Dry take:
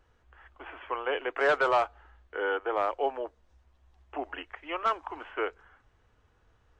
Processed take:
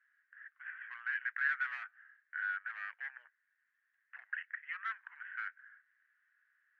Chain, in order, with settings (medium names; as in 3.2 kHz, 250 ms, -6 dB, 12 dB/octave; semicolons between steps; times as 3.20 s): overload inside the chain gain 26.5 dB; Butterworth band-pass 1.7 kHz, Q 4; differentiator; trim +17.5 dB